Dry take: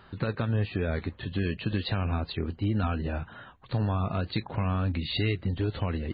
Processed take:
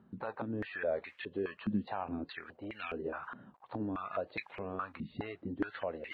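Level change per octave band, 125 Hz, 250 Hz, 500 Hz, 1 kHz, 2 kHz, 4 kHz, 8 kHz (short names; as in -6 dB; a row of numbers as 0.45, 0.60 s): -20.0 dB, -7.5 dB, -3.5 dB, -4.5 dB, -4.5 dB, -16.0 dB, n/a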